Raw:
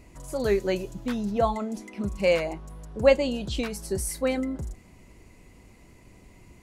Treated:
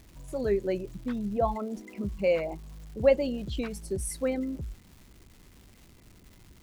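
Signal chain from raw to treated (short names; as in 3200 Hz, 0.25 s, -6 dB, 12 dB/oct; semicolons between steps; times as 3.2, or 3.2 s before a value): formant sharpening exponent 1.5; crackle 500/s -43 dBFS; gain -3 dB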